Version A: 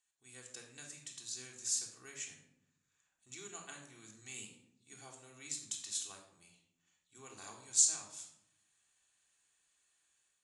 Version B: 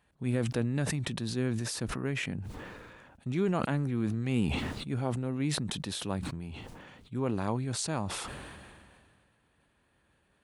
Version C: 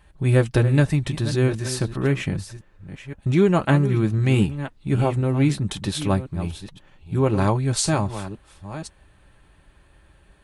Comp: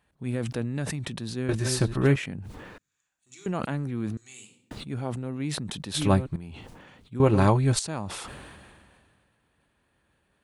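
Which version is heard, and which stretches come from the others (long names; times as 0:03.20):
B
0:01.49–0:02.16: punch in from C
0:02.78–0:03.46: punch in from A
0:04.17–0:04.71: punch in from A
0:05.94–0:06.36: punch in from C
0:07.20–0:07.79: punch in from C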